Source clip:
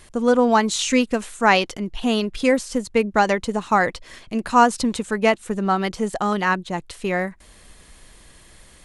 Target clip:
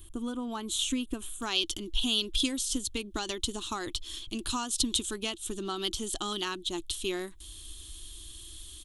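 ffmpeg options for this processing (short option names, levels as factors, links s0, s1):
-af "asetnsamples=n=441:p=0,asendcmd='1.42 equalizer g 5.5',equalizer=f=5000:w=0.74:g=-11,acompressor=threshold=0.126:ratio=6,firequalizer=gain_entry='entry(100,0);entry(150,-24);entry(330,0);entry(480,-23);entry(1200,-13);entry(2000,-21);entry(3300,5);entry(4700,-8);entry(6900,-2);entry(13000,6)':delay=0.05:min_phase=1,volume=1.26"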